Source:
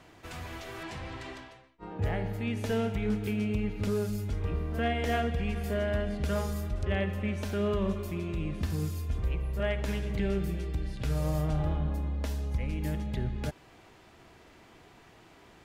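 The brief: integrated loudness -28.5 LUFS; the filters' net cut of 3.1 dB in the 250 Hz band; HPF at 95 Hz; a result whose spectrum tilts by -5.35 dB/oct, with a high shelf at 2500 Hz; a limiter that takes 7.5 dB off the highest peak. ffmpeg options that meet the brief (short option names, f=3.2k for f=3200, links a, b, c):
-af "highpass=95,equalizer=f=250:t=o:g=-4,highshelf=f=2.5k:g=3.5,volume=7.5dB,alimiter=limit=-17dB:level=0:latency=1"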